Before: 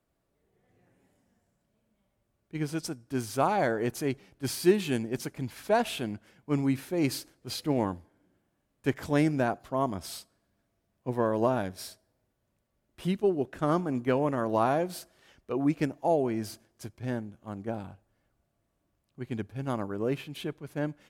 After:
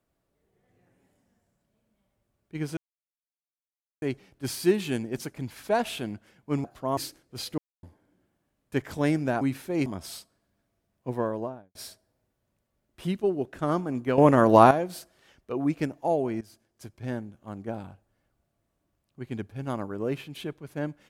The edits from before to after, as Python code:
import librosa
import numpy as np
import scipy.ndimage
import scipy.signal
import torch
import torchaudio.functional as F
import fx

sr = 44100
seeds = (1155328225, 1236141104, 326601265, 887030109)

y = fx.studio_fade_out(x, sr, start_s=11.09, length_s=0.66)
y = fx.edit(y, sr, fx.silence(start_s=2.77, length_s=1.25),
    fx.swap(start_s=6.64, length_s=0.45, other_s=9.53, other_length_s=0.33),
    fx.silence(start_s=7.7, length_s=0.25),
    fx.clip_gain(start_s=14.18, length_s=0.53, db=10.5),
    fx.fade_in_from(start_s=16.41, length_s=0.61, floor_db=-18.0), tone=tone)